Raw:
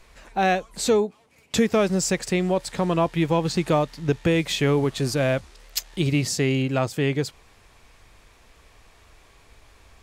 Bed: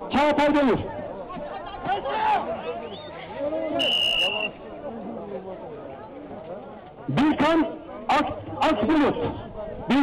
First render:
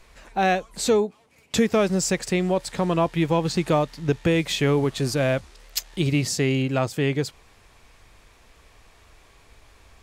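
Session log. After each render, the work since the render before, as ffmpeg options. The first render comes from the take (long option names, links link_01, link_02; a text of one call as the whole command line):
ffmpeg -i in.wav -af anull out.wav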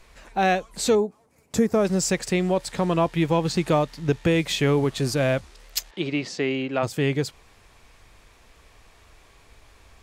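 ffmpeg -i in.wav -filter_complex "[0:a]asettb=1/sr,asplit=3[link_01][link_02][link_03];[link_01]atrim=end=0.954[link_04];[link_02]atrim=start=0.95:end=1.85,asetpts=PTS-STARTPTS,afade=type=in:duration=0.004:curve=qsin,afade=type=out:start_time=0.896:duration=0.004:curve=qsin,equalizer=frequency=3000:width=1:gain=-13.5[link_05];[link_03]atrim=start=1.846[link_06];[link_04][link_05]acrossfade=duration=0.004:curve1=hsin:curve2=qsin[link_07];[link_07][link_06]acrossfade=duration=0.004:curve1=qsin:curve2=hsin,asplit=3[link_08][link_09][link_10];[link_08]afade=type=out:start_time=5.9:duration=0.02[link_11];[link_09]highpass=270,lowpass=3600,afade=type=in:start_time=5.9:duration=0.02,afade=type=out:start_time=6.82:duration=0.02[link_12];[link_10]afade=type=in:start_time=6.82:duration=0.02[link_13];[link_11][link_12][link_13]amix=inputs=3:normalize=0" out.wav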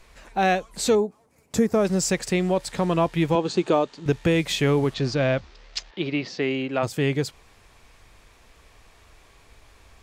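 ffmpeg -i in.wav -filter_complex "[0:a]asettb=1/sr,asplit=3[link_01][link_02][link_03];[link_01]atrim=end=3.354[link_04];[link_02]atrim=start=3.35:end=4.06,asetpts=PTS-STARTPTS,afade=type=in:duration=0.004:curve=qsin,afade=type=out:start_time=0.706:duration=0.004:curve=qsin,highpass=140,equalizer=frequency=150:width_type=q:width=4:gain=-9,equalizer=frequency=390:width_type=q:width=4:gain=7,equalizer=frequency=2000:width_type=q:width=4:gain=-7,equalizer=frequency=5300:width_type=q:width=4:gain=-6,lowpass=frequency=7200:width=0.5412,lowpass=frequency=7200:width=1.3066[link_05];[link_03]atrim=start=4.056[link_06];[link_04][link_05]acrossfade=duration=0.004:curve1=hsin:curve2=qsin[link_07];[link_07][link_06]acrossfade=duration=0.004:curve1=qsin:curve2=hsin,asettb=1/sr,asplit=3[link_08][link_09][link_10];[link_08]atrim=end=4.944[link_11];[link_09]atrim=start=4.94:end=6.42,asetpts=PTS-STARTPTS,afade=type=in:duration=0.004:curve=qsin,afade=type=out:start_time=1.476:duration=0.004:curve=qsin,lowpass=frequency=5500:width=0.5412,lowpass=frequency=5500:width=1.3066[link_12];[link_10]atrim=start=6.416[link_13];[link_11][link_12]acrossfade=duration=0.004:curve1=hsin:curve2=qsin[link_14];[link_14][link_13]acrossfade=duration=0.004:curve1=qsin:curve2=hsin" out.wav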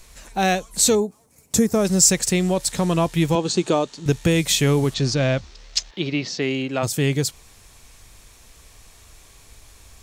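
ffmpeg -i in.wav -af "bass=frequency=250:gain=5,treble=frequency=4000:gain=14,bandreject=frequency=4800:width=21" out.wav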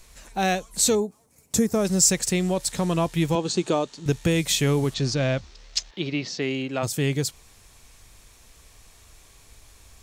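ffmpeg -i in.wav -af "volume=-3.5dB" out.wav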